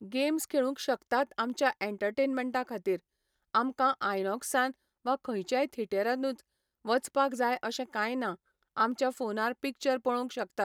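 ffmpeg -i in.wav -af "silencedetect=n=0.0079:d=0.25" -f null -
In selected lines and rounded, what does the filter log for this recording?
silence_start: 2.97
silence_end: 3.55 | silence_duration: 0.58
silence_start: 4.71
silence_end: 5.05 | silence_duration: 0.34
silence_start: 6.39
silence_end: 6.85 | silence_duration: 0.46
silence_start: 8.35
silence_end: 8.77 | silence_duration: 0.42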